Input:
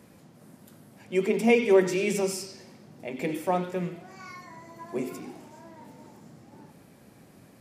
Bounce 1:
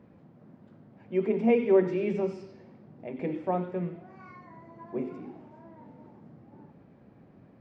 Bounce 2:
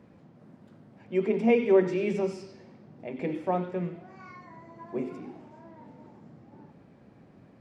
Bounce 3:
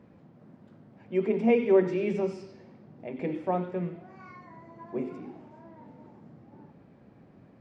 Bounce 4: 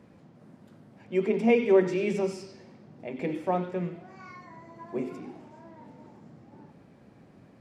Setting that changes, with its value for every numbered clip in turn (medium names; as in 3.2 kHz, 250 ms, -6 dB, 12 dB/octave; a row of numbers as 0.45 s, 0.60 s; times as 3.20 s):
tape spacing loss, at 10 kHz: 45 dB, 28 dB, 37 dB, 20 dB